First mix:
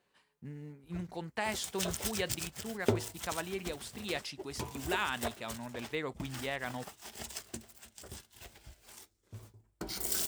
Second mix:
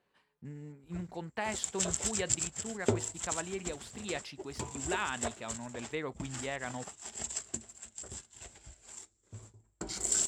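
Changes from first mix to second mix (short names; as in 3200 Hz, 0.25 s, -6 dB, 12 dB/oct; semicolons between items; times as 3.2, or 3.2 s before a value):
background: add synth low-pass 7500 Hz, resonance Q 14; master: add high shelf 4600 Hz -10 dB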